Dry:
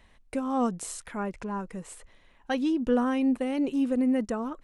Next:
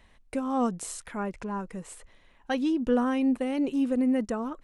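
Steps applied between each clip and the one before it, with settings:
no processing that can be heard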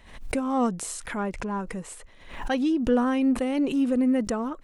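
in parallel at −11.5 dB: soft clipping −31.5 dBFS, distortion −7 dB
on the sum: background raised ahead of every attack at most 84 dB per second
level +1.5 dB

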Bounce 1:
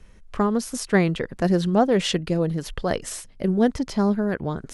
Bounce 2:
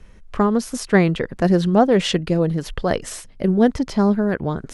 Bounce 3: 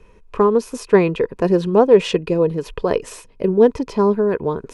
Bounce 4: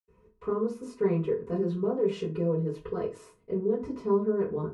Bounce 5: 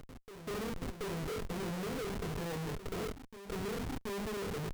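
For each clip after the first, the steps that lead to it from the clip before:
high-shelf EQ 4,900 Hz −5 dB; level +4 dB
hollow resonant body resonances 440/970/2,500 Hz, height 14 dB, ringing for 25 ms; level −5 dB
brickwall limiter −11.5 dBFS, peak gain reduction 10 dB; convolution reverb RT60 0.30 s, pre-delay 76 ms; level +6 dB
comparator with hysteresis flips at −35 dBFS; backwards echo 728 ms −11.5 dB; level −8.5 dB

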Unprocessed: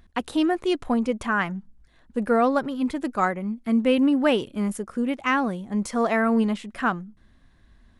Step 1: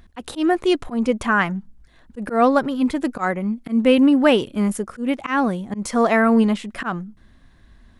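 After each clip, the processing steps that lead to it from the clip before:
volume swells 128 ms
level +5.5 dB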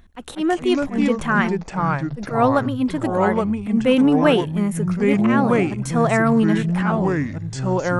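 notch filter 4,800 Hz, Q 7.1
delay with pitch and tempo change per echo 153 ms, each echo −4 semitones, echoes 3
level −1.5 dB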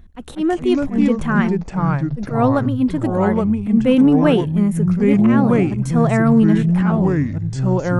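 low-shelf EQ 350 Hz +11 dB
level −3.5 dB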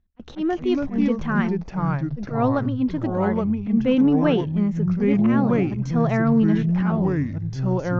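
noise gate with hold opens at −22 dBFS
Butterworth low-pass 6,400 Hz 72 dB per octave
level −5 dB

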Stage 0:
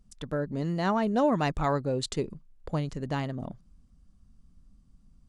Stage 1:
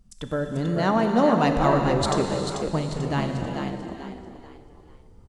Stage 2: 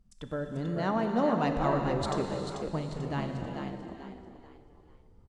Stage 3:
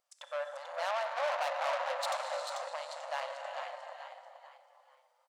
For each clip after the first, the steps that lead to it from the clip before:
on a send: echo with shifted repeats 440 ms, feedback 34%, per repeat +59 Hz, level −6 dB; on the sum: reverb whose tail is shaped and stops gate 500 ms flat, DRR 4 dB; level +4 dB
high-shelf EQ 5,200 Hz −7.5 dB; level −7.5 dB
tube saturation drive 34 dB, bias 0.55; linear-phase brick-wall high-pass 510 Hz; level +6 dB

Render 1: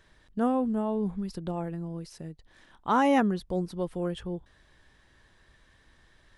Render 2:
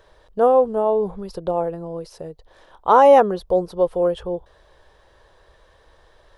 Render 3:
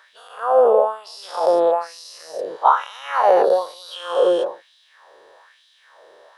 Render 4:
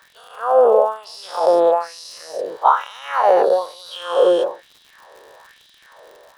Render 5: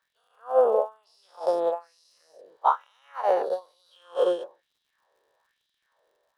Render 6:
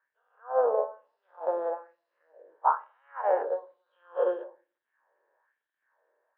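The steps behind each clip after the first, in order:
octave-band graphic EQ 125/250/500/1,000/2,000/8,000 Hz −5/−12/+12/+4/−7/−6 dB; level +7 dB
every bin's largest magnitude spread in time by 480 ms; downward compressor 6 to 1, threshold −13 dBFS, peak gain reduction 11.5 dB; auto-filter high-pass sine 1.1 Hz 390–3,600 Hz; level −2.5 dB
automatic gain control gain up to 4 dB; surface crackle 110 per second −36 dBFS
expander for the loud parts 2.5 to 1, over −23 dBFS; level −5.5 dB
loudspeaker in its box 320–2,100 Hz, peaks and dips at 350 Hz +3 dB, 560 Hz +4 dB, 930 Hz +5 dB, 1,600 Hz +9 dB; rectangular room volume 170 cubic metres, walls furnished, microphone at 0.5 metres; level −6.5 dB

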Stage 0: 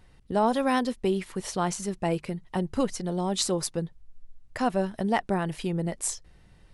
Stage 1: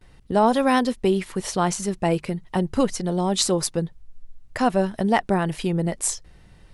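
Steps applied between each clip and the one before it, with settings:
noise gate with hold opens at −50 dBFS
level +5.5 dB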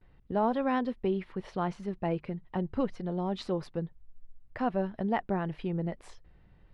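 high-frequency loss of the air 360 metres
level −8.5 dB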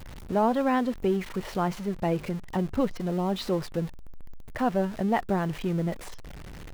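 converter with a step at zero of −40.5 dBFS
level +3.5 dB

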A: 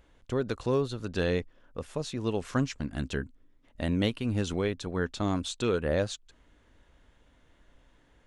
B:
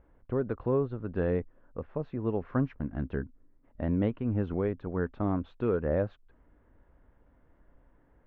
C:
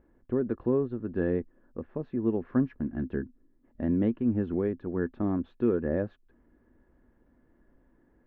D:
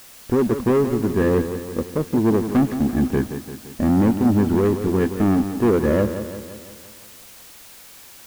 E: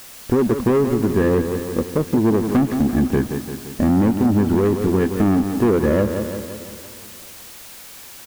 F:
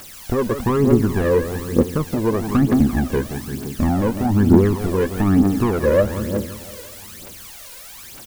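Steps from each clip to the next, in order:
Bessel low-pass filter 1,200 Hz, order 4
hollow resonant body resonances 240/340/1,700 Hz, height 11 dB, ringing for 45 ms; level −4.5 dB
leveller curve on the samples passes 3; background noise white −47 dBFS; feedback echo with a swinging delay time 171 ms, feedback 55%, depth 66 cents, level −10 dB; level +2.5 dB
downward compressor 3 to 1, threshold −19 dBFS, peak gain reduction 5.5 dB; repeating echo 427 ms, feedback 52%, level −24 dB; level +4.5 dB
phase shifter 1.1 Hz, delay 2.1 ms, feedback 65%; level −1.5 dB

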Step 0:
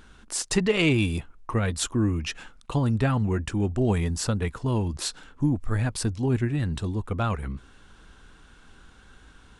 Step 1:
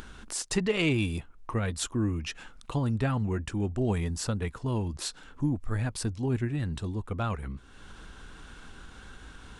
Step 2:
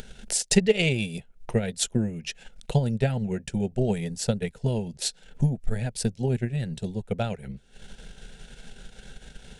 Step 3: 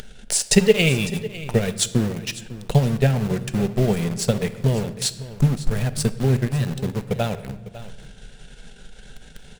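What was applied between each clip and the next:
upward compression, threshold −31 dBFS; level −4.5 dB
transient designer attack +7 dB, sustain −7 dB; phaser with its sweep stopped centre 300 Hz, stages 6; level +4.5 dB
in parallel at −5 dB: bit reduction 5 bits; on the sum: single-tap delay 552 ms −16 dB; rectangular room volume 810 cubic metres, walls mixed, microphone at 0.37 metres; level +1 dB

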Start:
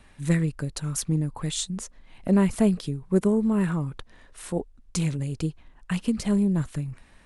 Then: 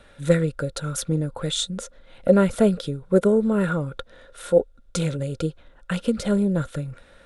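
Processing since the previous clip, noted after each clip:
parametric band 3,600 Hz +9.5 dB 0.26 octaves
hollow resonant body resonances 530/1,400 Hz, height 18 dB, ringing for 40 ms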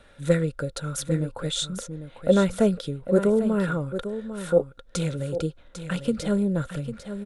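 single-tap delay 799 ms −10.5 dB
level −2.5 dB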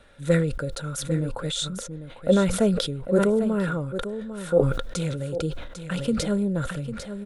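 level that may fall only so fast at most 54 dB per second
level −1 dB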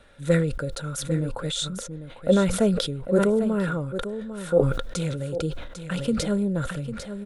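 no processing that can be heard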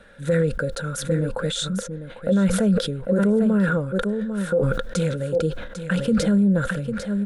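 thirty-one-band graphic EQ 200 Hz +11 dB, 500 Hz +8 dB, 1,600 Hz +10 dB
brickwall limiter −13.5 dBFS, peak gain reduction 11.5 dB
level +1 dB

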